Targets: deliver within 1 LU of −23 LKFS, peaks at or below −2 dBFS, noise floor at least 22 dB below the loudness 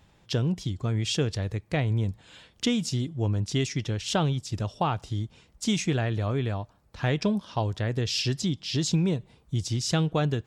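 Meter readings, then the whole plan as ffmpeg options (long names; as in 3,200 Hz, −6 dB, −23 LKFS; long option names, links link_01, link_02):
integrated loudness −28.0 LKFS; sample peak −13.0 dBFS; target loudness −23.0 LKFS
→ -af "volume=5dB"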